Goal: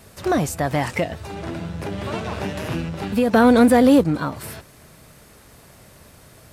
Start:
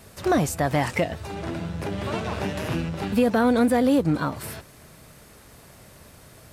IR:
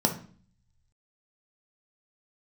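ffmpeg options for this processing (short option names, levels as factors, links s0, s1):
-filter_complex "[0:a]asettb=1/sr,asplit=3[s0][s1][s2];[s0]atrim=end=3.334[s3];[s1]atrim=start=3.33:end=4.04,asetpts=PTS-STARTPTS,afade=t=in:d=0.004:c=qsin,afade=t=out:st=0.706:d=0.004:c=qsin,acontrast=46[s4];[s2]atrim=start=4.036[s5];[s3][s4]acrossfade=d=0.004:c1=hsin:c2=qsin[s6];[s6][s5]acrossfade=d=0.004:c1=qsin:c2=hsin,volume=1.12"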